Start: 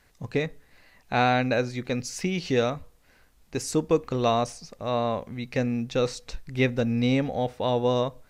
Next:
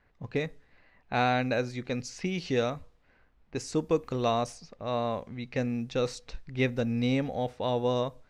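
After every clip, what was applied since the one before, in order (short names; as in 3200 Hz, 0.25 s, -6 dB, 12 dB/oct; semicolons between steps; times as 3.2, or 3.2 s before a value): low-pass opened by the level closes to 2100 Hz, open at -22.5 dBFS; gain -4 dB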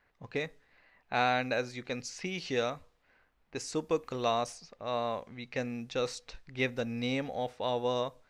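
low shelf 350 Hz -10 dB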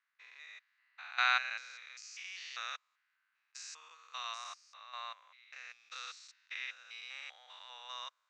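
stepped spectrum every 0.2 s; elliptic band-pass 1200–7300 Hz, stop band 80 dB; upward expander 1.5:1, over -58 dBFS; gain +5.5 dB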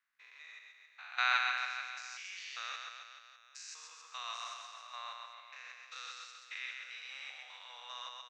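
reverse bouncing-ball echo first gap 0.13 s, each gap 1.1×, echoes 5; gain -1.5 dB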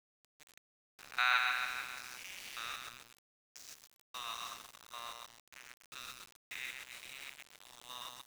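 sample gate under -44 dBFS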